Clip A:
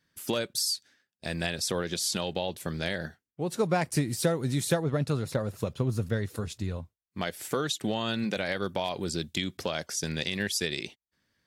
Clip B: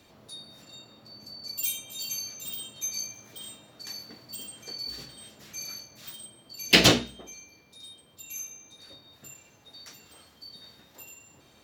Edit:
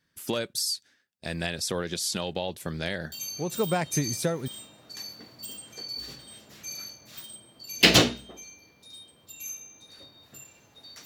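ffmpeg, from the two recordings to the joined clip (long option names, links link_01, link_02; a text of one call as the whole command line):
ffmpeg -i cue0.wav -i cue1.wav -filter_complex "[0:a]apad=whole_dur=11.05,atrim=end=11.05,atrim=end=4.48,asetpts=PTS-STARTPTS[link_01];[1:a]atrim=start=2.02:end=9.95,asetpts=PTS-STARTPTS[link_02];[link_01][link_02]acrossfade=duration=1.36:curve1=log:curve2=log" out.wav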